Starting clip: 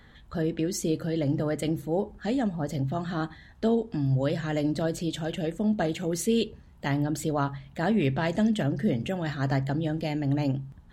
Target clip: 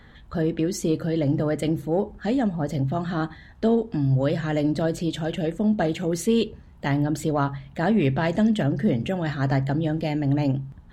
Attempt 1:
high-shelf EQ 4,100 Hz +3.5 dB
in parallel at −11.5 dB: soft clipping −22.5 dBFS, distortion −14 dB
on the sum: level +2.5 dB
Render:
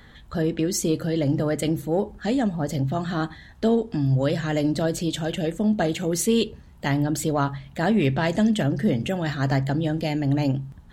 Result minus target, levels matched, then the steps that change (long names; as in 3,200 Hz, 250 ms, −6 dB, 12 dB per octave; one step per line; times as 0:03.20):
8,000 Hz band +7.0 dB
change: high-shelf EQ 4,100 Hz −6 dB